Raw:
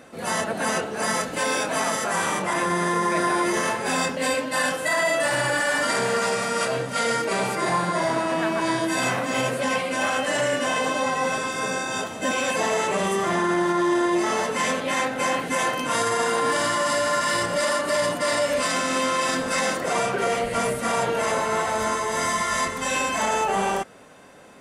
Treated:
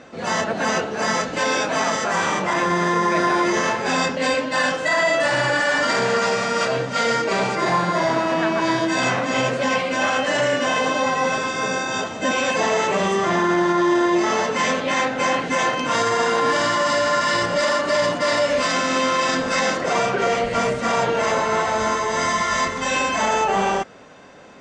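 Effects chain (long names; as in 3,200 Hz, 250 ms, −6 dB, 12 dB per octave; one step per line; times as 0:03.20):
Butterworth low-pass 6,900 Hz 36 dB per octave
level +3.5 dB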